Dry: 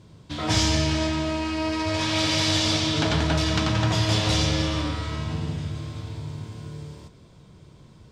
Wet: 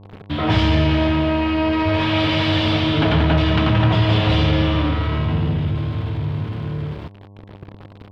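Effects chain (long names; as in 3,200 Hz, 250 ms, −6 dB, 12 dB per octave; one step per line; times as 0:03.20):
parametric band 3,000 Hz +5.5 dB 0.58 octaves
centre clipping without the shift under −43 dBFS
power curve on the samples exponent 0.7
hum with harmonics 100 Hz, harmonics 11, −47 dBFS −7 dB per octave
high-frequency loss of the air 420 metres
level +4.5 dB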